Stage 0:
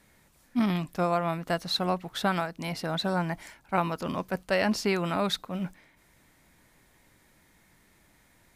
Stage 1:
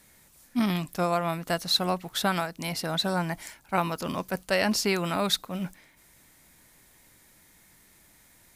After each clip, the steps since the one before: high shelf 4500 Hz +11 dB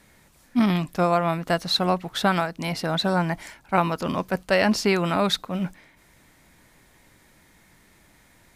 LPF 3000 Hz 6 dB/oct; gain +5.5 dB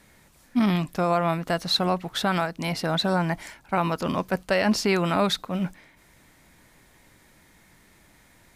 limiter -12.5 dBFS, peak gain reduction 5 dB

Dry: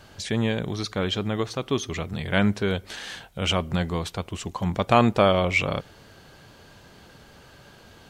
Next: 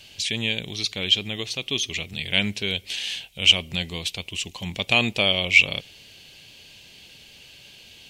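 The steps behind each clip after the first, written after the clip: resonant high shelf 1900 Hz +11.5 dB, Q 3; gain -6.5 dB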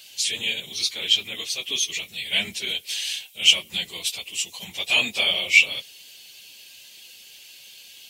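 phase scrambler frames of 50 ms; RIAA curve recording; gain -4.5 dB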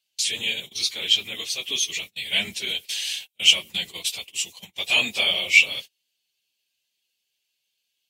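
gate -35 dBFS, range -31 dB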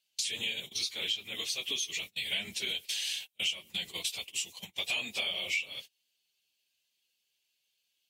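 compressor 6:1, threshold -29 dBFS, peak gain reduction 18.5 dB; gain -2 dB

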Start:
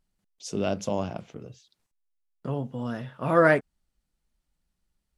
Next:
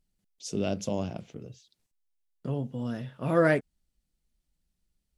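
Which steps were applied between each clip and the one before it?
bell 1100 Hz -8 dB 1.7 oct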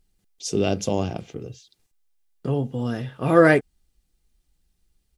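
comb 2.5 ms, depth 33%; gain +8 dB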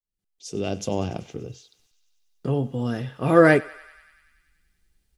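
opening faded in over 1.23 s; thinning echo 96 ms, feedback 76%, high-pass 840 Hz, level -18.5 dB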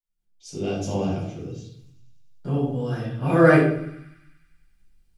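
shoebox room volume 870 m³, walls furnished, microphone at 7.8 m; gain -10 dB

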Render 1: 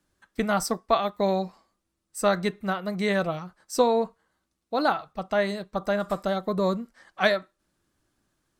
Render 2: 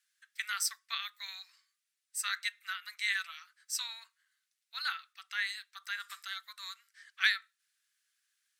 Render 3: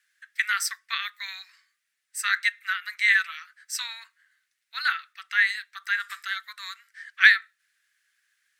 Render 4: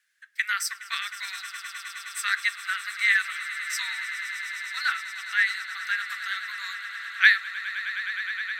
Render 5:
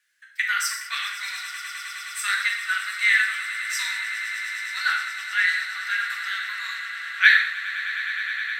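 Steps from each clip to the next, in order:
steep high-pass 1600 Hz 36 dB/oct
bell 1800 Hz +11.5 dB 1 oct; gain +3 dB
swelling echo 0.104 s, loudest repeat 8, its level -16 dB; gain -1.5 dB
reverb, pre-delay 3 ms, DRR 0 dB

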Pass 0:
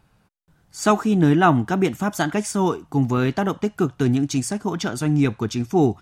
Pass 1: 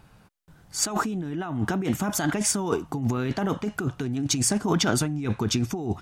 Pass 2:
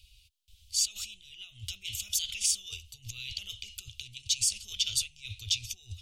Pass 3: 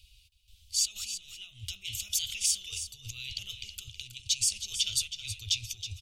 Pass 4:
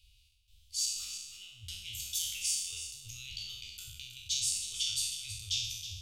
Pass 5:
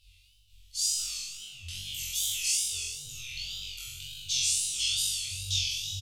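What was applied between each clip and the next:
negative-ratio compressor -26 dBFS, ratio -1
inverse Chebyshev band-stop 150–1800 Hz, stop band 40 dB; bell 2700 Hz +15 dB 1.2 oct; limiter -15.5 dBFS, peak gain reduction 10 dB
echo 0.321 s -10.5 dB
spectral trails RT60 0.95 s; gain -8 dB
doubler 23 ms -14 dB; flutter echo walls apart 3.7 m, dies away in 0.82 s; wow and flutter 110 cents

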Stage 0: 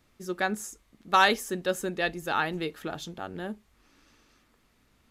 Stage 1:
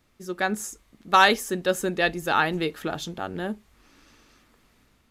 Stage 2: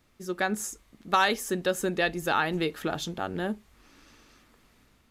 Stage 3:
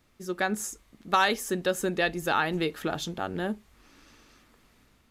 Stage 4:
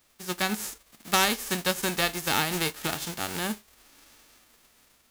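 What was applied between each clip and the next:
AGC gain up to 5.5 dB
compressor 2:1, threshold -24 dBFS, peak gain reduction 7 dB
nothing audible
spectral whitening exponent 0.3

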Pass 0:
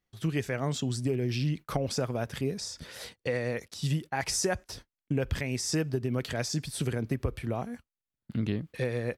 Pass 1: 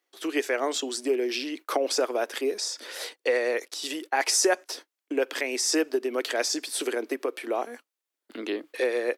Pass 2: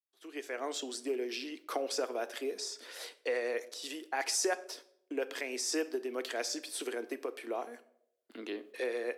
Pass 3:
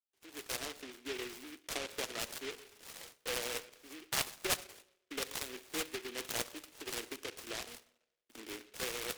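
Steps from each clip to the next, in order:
steep high-pass 300 Hz 48 dB/oct; gain +7 dB
opening faded in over 0.76 s; on a send at -12 dB: reverb RT60 0.75 s, pre-delay 3 ms; on the sum: gain -9 dB
ladder low-pass 1800 Hz, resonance 70%; noise-modulated delay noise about 2300 Hz, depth 0.29 ms; gain +4.5 dB

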